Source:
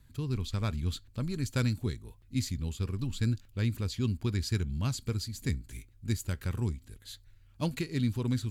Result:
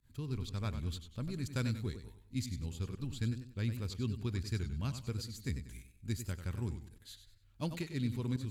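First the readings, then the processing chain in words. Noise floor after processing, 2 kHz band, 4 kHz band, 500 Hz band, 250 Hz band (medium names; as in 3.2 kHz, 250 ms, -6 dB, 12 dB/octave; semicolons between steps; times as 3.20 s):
-63 dBFS, -5.5 dB, -6.0 dB, -5.5 dB, -5.5 dB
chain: volume shaper 122 bpm, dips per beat 1, -23 dB, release 90 ms; modulated delay 96 ms, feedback 34%, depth 98 cents, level -10 dB; trim -6 dB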